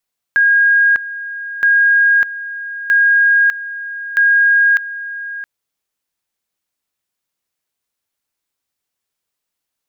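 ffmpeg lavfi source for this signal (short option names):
-f lavfi -i "aevalsrc='pow(10,(-8-15*gte(mod(t,1.27),0.6))/20)*sin(2*PI*1630*t)':d=5.08:s=44100"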